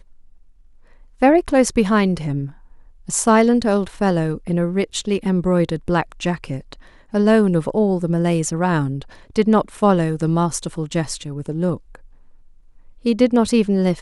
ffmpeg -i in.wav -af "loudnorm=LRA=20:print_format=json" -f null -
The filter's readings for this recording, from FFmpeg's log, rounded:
"input_i" : "-18.9",
"input_tp" : "-2.6",
"input_lra" : "3.0",
"input_thresh" : "-30.0",